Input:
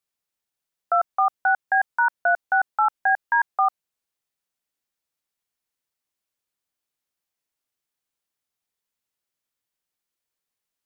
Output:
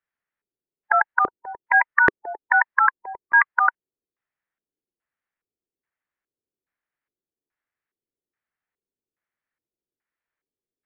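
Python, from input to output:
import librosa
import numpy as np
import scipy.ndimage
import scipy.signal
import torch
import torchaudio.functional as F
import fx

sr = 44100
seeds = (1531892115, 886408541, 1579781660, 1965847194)

y = fx.formant_shift(x, sr, semitones=4)
y = fx.filter_lfo_lowpass(y, sr, shape='square', hz=1.2, low_hz=390.0, high_hz=1800.0, q=3.0)
y = y * 10.0 ** (-1.5 / 20.0)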